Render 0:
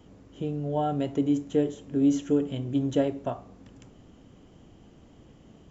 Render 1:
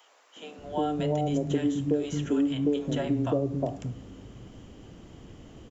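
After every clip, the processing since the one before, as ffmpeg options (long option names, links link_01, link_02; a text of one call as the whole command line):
ffmpeg -i in.wav -filter_complex "[0:a]acrossover=split=210|720[link_01][link_02][link_03];[link_02]adelay=360[link_04];[link_01]adelay=580[link_05];[link_05][link_04][link_03]amix=inputs=3:normalize=0,acrossover=split=800|2900[link_06][link_07][link_08];[link_06]acompressor=threshold=-31dB:ratio=4[link_09];[link_07]acompressor=threshold=-47dB:ratio=4[link_10];[link_08]acompressor=threshold=-53dB:ratio=4[link_11];[link_09][link_10][link_11]amix=inputs=3:normalize=0,volume=7dB" out.wav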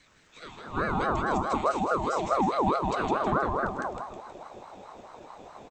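ffmpeg -i in.wav -af "aecho=1:1:159|318|477|636|795|954:0.631|0.278|0.122|0.0537|0.0236|0.0104,aeval=exprs='val(0)*sin(2*PI*720*n/s+720*0.35/4.7*sin(2*PI*4.7*n/s))':channel_layout=same,volume=1.5dB" out.wav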